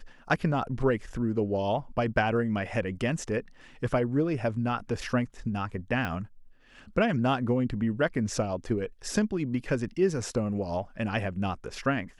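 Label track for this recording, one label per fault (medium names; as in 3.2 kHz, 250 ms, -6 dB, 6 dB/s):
6.050000	6.050000	pop -18 dBFS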